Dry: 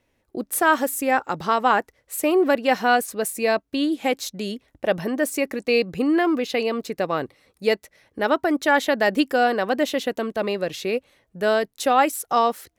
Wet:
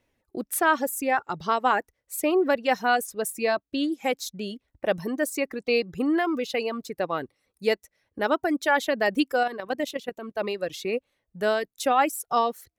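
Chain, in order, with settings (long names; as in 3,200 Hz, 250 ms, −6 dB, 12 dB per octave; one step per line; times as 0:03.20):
reverb reduction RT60 1.4 s
0:09.43–0:10.37: output level in coarse steps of 11 dB
level −3 dB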